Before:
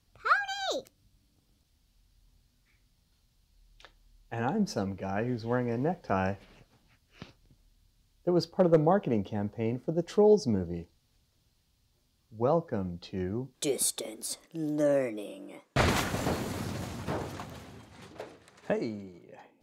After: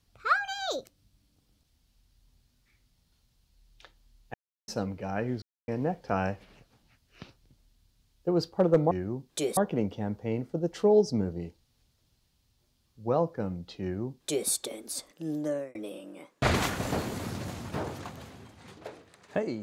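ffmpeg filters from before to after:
-filter_complex "[0:a]asplit=8[s0][s1][s2][s3][s4][s5][s6][s7];[s0]atrim=end=4.34,asetpts=PTS-STARTPTS,afade=t=out:st=4.336:d=0.004:c=hsin[s8];[s1]atrim=start=4.34:end=4.68,asetpts=PTS-STARTPTS,volume=0[s9];[s2]atrim=start=4.68:end=5.42,asetpts=PTS-STARTPTS,afade=t=in:d=0.004:c=hsin,afade=t=out:st=0.736:d=0.004:c=hsin[s10];[s3]atrim=start=5.42:end=5.68,asetpts=PTS-STARTPTS,volume=0[s11];[s4]atrim=start=5.68:end=8.912,asetpts=PTS-STARTPTS,afade=t=in:d=0.004:c=hsin[s12];[s5]atrim=start=13.158:end=13.822[s13];[s6]atrim=start=8.908:end=15.09,asetpts=PTS-STARTPTS,afade=t=out:st=5.762:d=0.42[s14];[s7]atrim=start=15.09,asetpts=PTS-STARTPTS,afade=t=in:d=0.004:c=hsin[s15];[s8][s9][s10][s11][s12]concat=n=5:v=0:a=1[s16];[s16][s13]acrossfade=d=0.004:c1=hsin:c2=hsin[s17];[s14][s15]concat=n=2:v=0:a=1[s18];[s17][s18]acrossfade=d=0.004:c1=hsin:c2=hsin"

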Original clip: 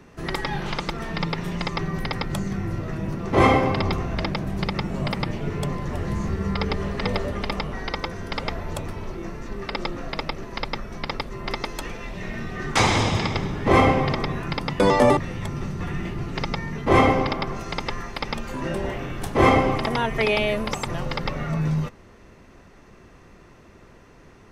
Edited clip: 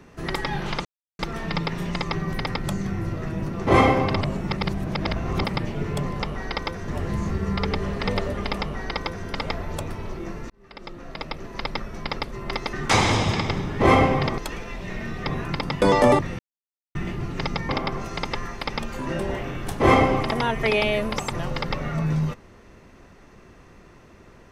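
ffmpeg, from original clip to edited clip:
-filter_complex "[0:a]asplit=13[s0][s1][s2][s3][s4][s5][s6][s7][s8][s9][s10][s11][s12];[s0]atrim=end=0.85,asetpts=PTS-STARTPTS,afade=t=out:st=0.846:d=0.004:c=hsin,apad=pad_dur=0.34[s13];[s1]atrim=start=0.85:end=3.872,asetpts=PTS-STARTPTS,afade=t=in:d=0.004:c=hsin[s14];[s2]atrim=start=3.868:end=5.102,asetpts=PTS-STARTPTS,areverse[s15];[s3]atrim=start=5.098:end=5.862[s16];[s4]atrim=start=7.568:end=8.252[s17];[s5]atrim=start=5.858:end=9.48,asetpts=PTS-STARTPTS,afade=t=out:st=3.618:d=0.004:c=hsin[s18];[s6]atrim=start=9.48:end=11.712,asetpts=PTS-STARTPTS,afade=t=in:d=1.2[s19];[s7]atrim=start=12.588:end=14.242[s20];[s8]atrim=start=11.708:end=12.592[s21];[s9]atrim=start=14.238:end=15.37,asetpts=PTS-STARTPTS,afade=t=out:st=1.128:d=0.004:c=hsin[s22];[s10]atrim=start=15.37:end=15.93,asetpts=PTS-STARTPTS,volume=0[s23];[s11]atrim=start=15.93:end=16.672,asetpts=PTS-STARTPTS,afade=t=in:d=0.004:c=hsin[s24];[s12]atrim=start=17.238[s25];[s13][s14]concat=n=2:v=0:a=1[s26];[s26][s15]acrossfade=d=0.004:c1=hsin:c2=hsin[s27];[s27][s16]acrossfade=d=0.004:c1=hsin:c2=hsin[s28];[s28][s17]acrossfade=d=0.004:c1=hsin:c2=hsin[s29];[s18][s19]concat=n=2:v=0:a=1[s30];[s29][s30]acrossfade=d=0.004:c1=hsin:c2=hsin[s31];[s31][s20]acrossfade=d=0.004:c1=hsin:c2=hsin[s32];[s32][s21]acrossfade=d=0.004:c1=hsin:c2=hsin[s33];[s22][s23][s24]concat=n=3:v=0:a=1[s34];[s33][s34]acrossfade=d=0.004:c1=hsin:c2=hsin[s35];[s35][s25]acrossfade=d=0.004:c1=hsin:c2=hsin"

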